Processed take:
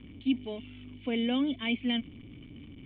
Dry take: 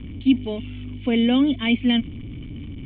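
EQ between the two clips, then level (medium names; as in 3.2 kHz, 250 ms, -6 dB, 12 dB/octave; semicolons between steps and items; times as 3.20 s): bass shelf 150 Hz -11 dB; -8.0 dB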